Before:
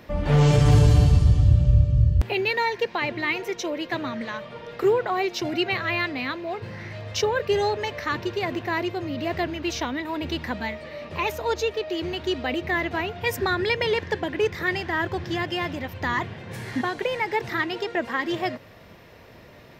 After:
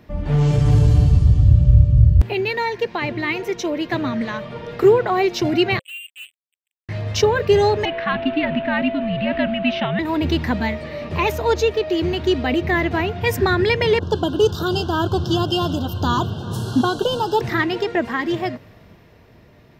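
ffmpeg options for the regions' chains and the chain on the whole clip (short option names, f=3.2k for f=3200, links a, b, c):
-filter_complex "[0:a]asettb=1/sr,asplit=3[a][b][c];[a]atrim=end=5.794[d];[b]atrim=start=5.79:end=6.89,asetpts=PTS-STARTPTS,afade=t=in:d=0.004:c=qsin,afade=t=out:st=1.096:d=0.004:c=qsin,asuperpass=centerf=2800:order=12:qfactor=5.3,acrusher=bits=6:mix=0:aa=0.5[e];[c]atrim=start=6.886[f];[d][e]acrossfade=d=0.004:c1=hsin:c2=qsin[g];[g][f]acrossfade=d=0.004:c1=qsin:c2=hsin,asettb=1/sr,asplit=3[h][i][j];[h]atrim=end=7.854[k];[i]atrim=start=7.85:end=9.99,asetpts=PTS-STARTPTS,afade=t=in:d=0.004:c=qsin,afade=t=out:st=2.136:d=0.004:c=qsin,highpass=310,equalizer=f=570:t=q:w=4:g=-10,equalizer=f=970:t=q:w=4:g=-4,equalizer=f=3k:t=q:w=4:g=7,lowpass=f=3.4k:w=0.5412,lowpass=f=3.4k:w=1.3066,afreqshift=-99,aeval=exprs='val(0)+0.0282*sin(2*PI*670*n/s)':c=same[l];[j]atrim=start=9.986[m];[k][l]acrossfade=d=0.004:c1=hsin:c2=qsin[n];[n][m]acrossfade=d=0.004:c1=qsin:c2=hsin,asettb=1/sr,asplit=3[o][p][q];[o]atrim=end=13.994[r];[p]atrim=start=13.99:end=17.41,asetpts=PTS-STARTPTS,afade=t=in:d=0.004:c=qsin,afade=t=out:st=3.416:d=0.004:c=qsin,asuperstop=centerf=2100:order=12:qfactor=1.6,aecho=1:1:368:0.0944,atrim=end_sample=150822,adynamicequalizer=threshold=0.00794:dfrequency=1600:dqfactor=0.7:tfrequency=1600:tqfactor=0.7:attack=5:release=100:ratio=0.375:range=3:mode=boostabove:tftype=highshelf[s];[q]atrim=start=17.406[t];[r][s]acrossfade=d=0.004:c1=hsin:c2=qsin[u];[u][t]acrossfade=d=0.004:c1=qsin:c2=hsin,bandreject=f=530:w=12,dynaudnorm=f=100:g=31:m=12dB,lowshelf=f=410:g=8,volume=-6dB"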